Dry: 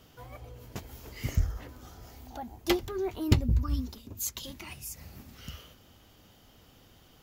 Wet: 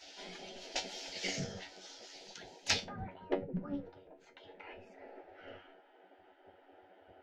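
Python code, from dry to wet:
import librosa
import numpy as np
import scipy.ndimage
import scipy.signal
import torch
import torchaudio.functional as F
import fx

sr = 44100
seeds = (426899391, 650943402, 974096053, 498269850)

y = fx.bass_treble(x, sr, bass_db=10, treble_db=8)
y = fx.fixed_phaser(y, sr, hz=300.0, stages=6)
y = fx.rider(y, sr, range_db=3, speed_s=0.5)
y = fx.lowpass(y, sr, hz=fx.steps((0.0, 5100.0), (2.84, 1500.0)), slope=24)
y = fx.spec_gate(y, sr, threshold_db=-20, keep='weak')
y = fx.comb_fb(y, sr, f0_hz=94.0, decay_s=0.2, harmonics='all', damping=0.0, mix_pct=80)
y = fx.doppler_dist(y, sr, depth_ms=0.15)
y = F.gain(torch.from_numpy(y), 15.0).numpy()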